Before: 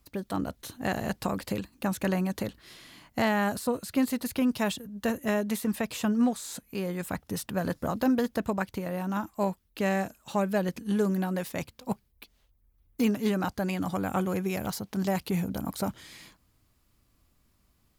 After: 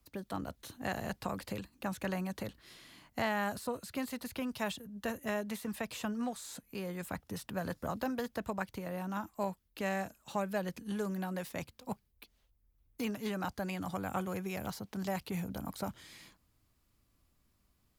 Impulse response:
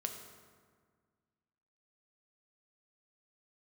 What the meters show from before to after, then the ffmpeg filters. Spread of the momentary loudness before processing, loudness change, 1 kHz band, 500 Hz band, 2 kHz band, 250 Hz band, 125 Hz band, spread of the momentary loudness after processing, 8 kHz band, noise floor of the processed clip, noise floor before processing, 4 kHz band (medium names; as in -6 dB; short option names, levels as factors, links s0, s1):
10 LU, -8.5 dB, -6.0 dB, -8.0 dB, -5.5 dB, -10.0 dB, -8.5 dB, 7 LU, -8.0 dB, -74 dBFS, -69 dBFS, -6.0 dB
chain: -filter_complex "[0:a]acrossover=split=170|460|4300[s0][s1][s2][s3];[s1]acompressor=threshold=0.0126:ratio=6[s4];[s3]alimiter=level_in=2.99:limit=0.0631:level=0:latency=1:release=66,volume=0.335[s5];[s0][s4][s2][s5]amix=inputs=4:normalize=0,volume=0.531"